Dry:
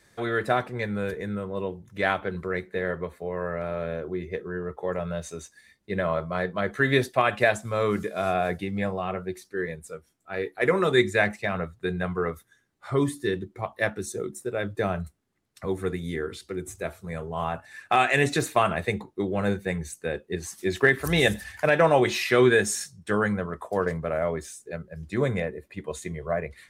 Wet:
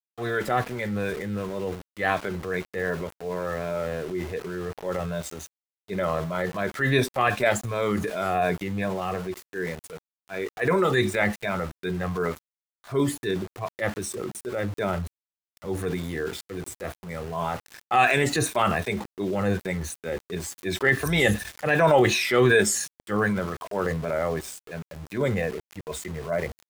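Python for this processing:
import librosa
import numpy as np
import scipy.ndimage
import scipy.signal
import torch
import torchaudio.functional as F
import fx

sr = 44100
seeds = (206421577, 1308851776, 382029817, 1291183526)

y = fx.spec_ripple(x, sr, per_octave=1.6, drift_hz=-2.7, depth_db=10)
y = np.where(np.abs(y) >= 10.0 ** (-39.5 / 20.0), y, 0.0)
y = fx.transient(y, sr, attack_db=-5, sustain_db=5)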